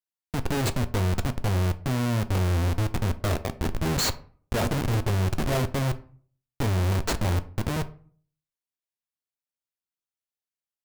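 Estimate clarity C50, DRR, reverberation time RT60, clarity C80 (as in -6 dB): 17.5 dB, 10.5 dB, 0.45 s, 21.5 dB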